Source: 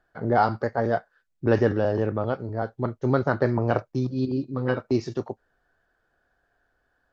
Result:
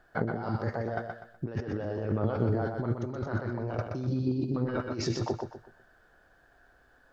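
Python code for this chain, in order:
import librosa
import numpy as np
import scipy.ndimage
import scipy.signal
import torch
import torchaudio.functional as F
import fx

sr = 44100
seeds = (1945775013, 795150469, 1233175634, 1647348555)

p1 = fx.over_compress(x, sr, threshold_db=-33.0, ratio=-1.0)
y = p1 + fx.echo_feedback(p1, sr, ms=124, feedback_pct=33, wet_db=-5.0, dry=0)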